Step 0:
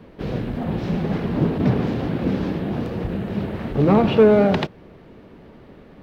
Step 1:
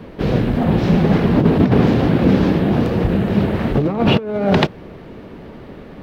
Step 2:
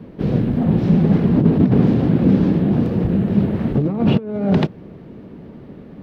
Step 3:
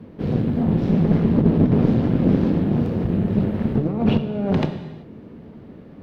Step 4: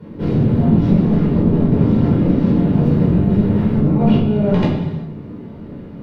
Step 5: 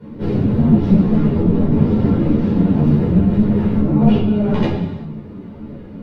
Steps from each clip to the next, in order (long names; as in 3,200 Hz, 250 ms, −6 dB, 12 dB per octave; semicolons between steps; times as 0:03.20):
compressor whose output falls as the input rises −19 dBFS, ratio −0.5; level +7 dB
parametric band 180 Hz +11.5 dB 2.7 octaves; level −10.5 dB
reverb whose tail is shaped and stops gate 410 ms falling, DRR 6.5 dB; tube saturation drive 5 dB, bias 0.7
downward compressor, threshold −18 dBFS, peak gain reduction 8 dB; rectangular room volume 520 cubic metres, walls furnished, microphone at 4.7 metres; level −1 dB
string-ensemble chorus; level +2.5 dB